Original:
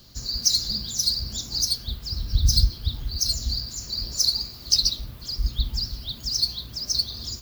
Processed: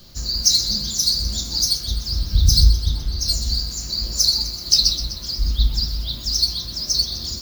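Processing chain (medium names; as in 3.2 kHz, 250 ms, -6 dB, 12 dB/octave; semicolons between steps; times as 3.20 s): 2.69–3.28 s: low-pass 3.6 kHz 6 dB/octave; feedback echo behind a high-pass 127 ms, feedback 66%, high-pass 2.2 kHz, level -12.5 dB; reverberation RT60 0.30 s, pre-delay 6 ms, DRR 3.5 dB; trim +3.5 dB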